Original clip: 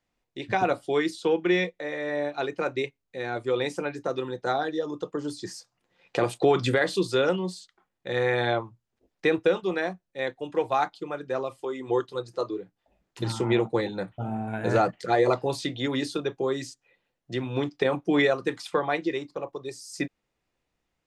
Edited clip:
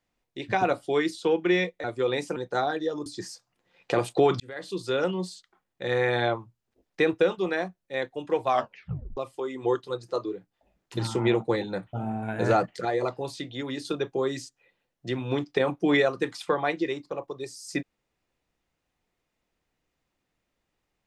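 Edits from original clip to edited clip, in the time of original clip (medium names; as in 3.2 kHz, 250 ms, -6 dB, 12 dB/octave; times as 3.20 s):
1.84–3.32 s: delete
3.84–4.28 s: delete
4.98–5.31 s: delete
6.65–7.46 s: fade in
10.73 s: tape stop 0.69 s
15.10–16.10 s: gain -5.5 dB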